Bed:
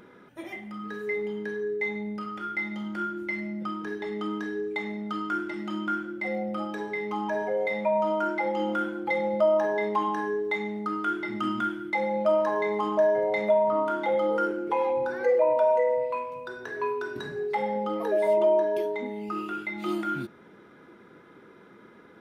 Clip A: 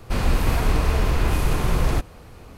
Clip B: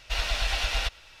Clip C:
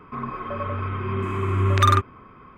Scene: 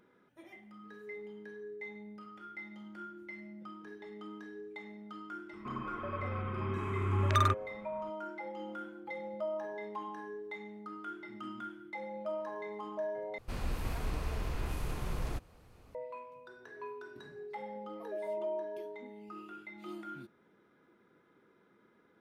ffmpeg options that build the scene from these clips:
-filter_complex "[0:a]volume=-15dB,asplit=2[a][b];[a]atrim=end=13.384[c];[1:a]atrim=end=2.57,asetpts=PTS-STARTPTS,volume=-16dB[d];[b]atrim=start=15.946[e];[3:a]atrim=end=2.57,asetpts=PTS-STARTPTS,volume=-10dB,afade=t=in:d=0.004:c=hsin,afade=t=out:st=2.566:d=0.004:c=hsin,adelay=243873S[f];[c][d]acrossfade=d=0.004:c1=hsin:c2=hsin[g];[g][e]acrossfade=d=0.004:c1=hsin:c2=hsin[h];[h][f]amix=inputs=2:normalize=0"

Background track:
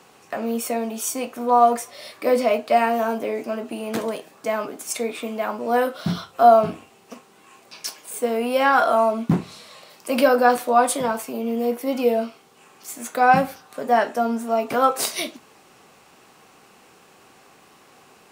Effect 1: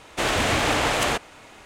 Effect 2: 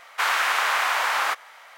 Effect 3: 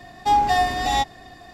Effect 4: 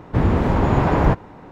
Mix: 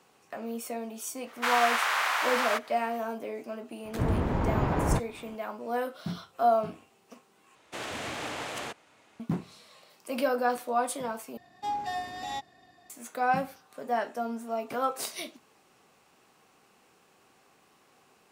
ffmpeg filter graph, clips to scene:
-filter_complex "[0:a]volume=-11dB[a];[1:a]highpass=120[b];[3:a]highpass=120[c];[a]asplit=3[d][e][f];[d]atrim=end=7.554[g];[b]atrim=end=1.65,asetpts=PTS-STARTPTS,volume=-14dB[h];[e]atrim=start=9.196:end=11.374[i];[c]atrim=end=1.53,asetpts=PTS-STARTPTS,volume=-14.5dB[j];[f]atrim=start=12.896[k];[2:a]atrim=end=1.77,asetpts=PTS-STARTPTS,volume=-5dB,afade=t=in:d=0.05,afade=t=out:st=1.72:d=0.05,adelay=1240[l];[4:a]atrim=end=1.51,asetpts=PTS-STARTPTS,volume=-10dB,afade=t=in:d=0.004:c=hsin,afade=t=out:st=1.506:d=0.004:c=hsin,adelay=169785S[m];[g][h]acrossfade=d=0.004:c1=hsin:c2=hsin[n];[n][i]acrossfade=d=0.004:c1=hsin:c2=hsin[o];[o][j]acrossfade=d=0.004:c1=hsin:c2=hsin[p];[p][k]acrossfade=d=0.004:c1=hsin:c2=hsin[q];[q][l][m]amix=inputs=3:normalize=0"

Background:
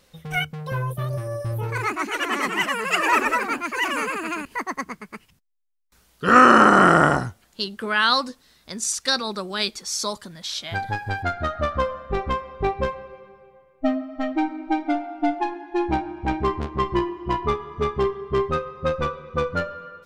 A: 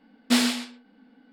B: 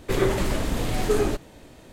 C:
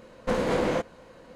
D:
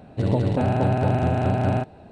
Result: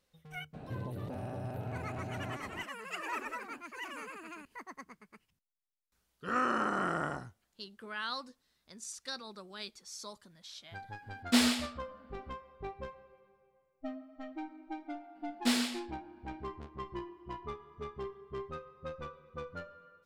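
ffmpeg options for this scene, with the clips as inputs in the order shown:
-filter_complex "[1:a]asplit=2[a][b];[0:a]volume=-19dB[c];[4:a]acompressor=threshold=-37dB:ratio=6:attack=3.2:release=140:knee=1:detection=peak,atrim=end=2.11,asetpts=PTS-STARTPTS,volume=-2dB,afade=t=in:d=0.02,afade=t=out:st=2.09:d=0.02,adelay=530[d];[a]atrim=end=1.32,asetpts=PTS-STARTPTS,volume=-5dB,afade=t=in:d=0.004:c=hsin,afade=t=out:st=1.316:d=0.004:c=hsin,adelay=11020[e];[b]atrim=end=1.32,asetpts=PTS-STARTPTS,volume=-8.5dB,afade=t=in:d=0.004:c=hsin,afade=t=out:st=1.316:d=0.004:c=hsin,adelay=15150[f];[c][d][e][f]amix=inputs=4:normalize=0"

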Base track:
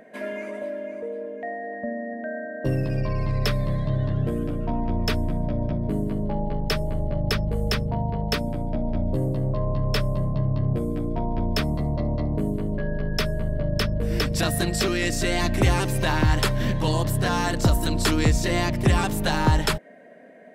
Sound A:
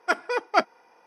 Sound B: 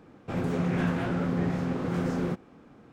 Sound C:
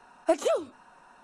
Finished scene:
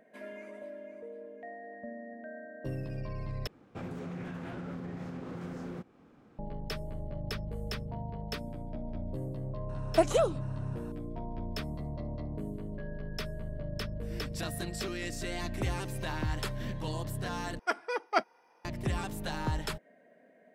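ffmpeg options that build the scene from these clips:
-filter_complex "[0:a]volume=-13dB[a];[2:a]alimiter=level_in=1.5dB:limit=-24dB:level=0:latency=1:release=208,volume=-1.5dB[b];[a]asplit=3[c][d][e];[c]atrim=end=3.474[f];[b]atrim=end=2.92,asetpts=PTS-STARTPTS,volume=-6.5dB[g];[d]atrim=start=6.386:end=17.594[h];[1:a]atrim=end=1.06,asetpts=PTS-STARTPTS,volume=-7dB[i];[e]atrim=start=18.646[j];[3:a]atrim=end=1.23,asetpts=PTS-STARTPTS,volume=-0.5dB,afade=t=in:d=0.004:c=hsin,afade=t=out:st=1.226:d=0.004:c=hsin,adelay=9690[k];[f][g]acrossfade=d=0.004:c1=hsin:c2=hsin[l];[l][h]acrossfade=d=0.004:c1=hsin:c2=hsin[m];[m][i]acrossfade=d=0.004:c1=hsin:c2=hsin[n];[n][j]acrossfade=d=0.004:c1=hsin:c2=hsin[o];[o][k]amix=inputs=2:normalize=0"

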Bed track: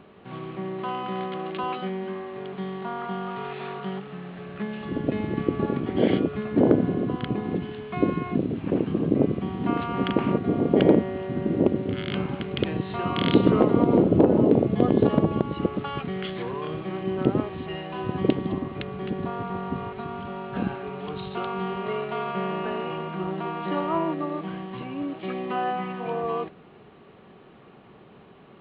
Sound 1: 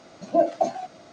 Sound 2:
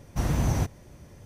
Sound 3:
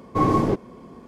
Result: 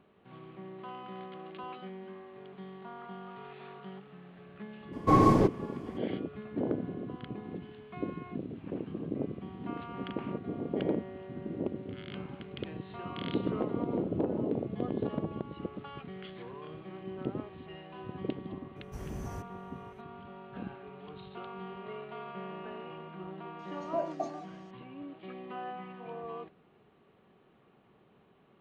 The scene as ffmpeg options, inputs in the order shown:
-filter_complex "[0:a]volume=-13.5dB[a];[2:a]equalizer=f=3.8k:t=o:w=0.42:g=-6.5[b];[3:a]atrim=end=1.07,asetpts=PTS-STARTPTS,volume=-2dB,afade=t=in:d=0.02,afade=t=out:st=1.05:d=0.02,adelay=4920[c];[b]atrim=end=1.25,asetpts=PTS-STARTPTS,volume=-16.5dB,afade=t=in:d=0.004:c=hsin,afade=t=out:st=1.246:d=0.004:c=hsin,adelay=827316S[d];[1:a]atrim=end=1.12,asetpts=PTS-STARTPTS,volume=-13dB,afade=t=in:d=0.004:c=hsin,afade=t=out:st=1.116:d=0.004:c=hsin,adelay=23590[e];[a][c][d][e]amix=inputs=4:normalize=0"

